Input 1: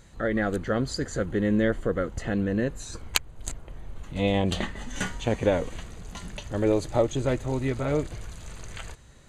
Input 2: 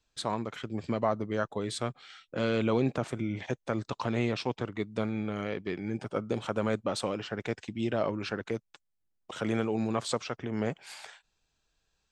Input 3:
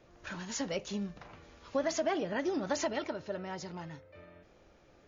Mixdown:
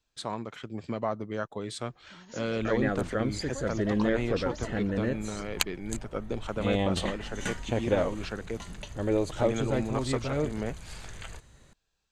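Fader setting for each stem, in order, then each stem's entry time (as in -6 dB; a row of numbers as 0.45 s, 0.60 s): -3.5 dB, -2.5 dB, -10.0 dB; 2.45 s, 0.00 s, 1.80 s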